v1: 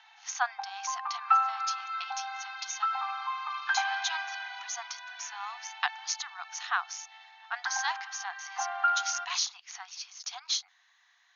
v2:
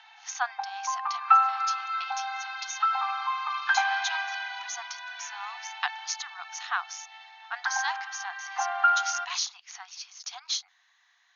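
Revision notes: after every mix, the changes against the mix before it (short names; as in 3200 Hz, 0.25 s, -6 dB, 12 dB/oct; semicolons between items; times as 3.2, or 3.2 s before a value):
background +4.5 dB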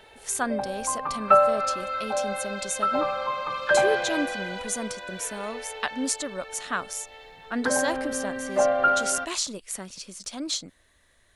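master: remove brick-wall FIR band-pass 700–6800 Hz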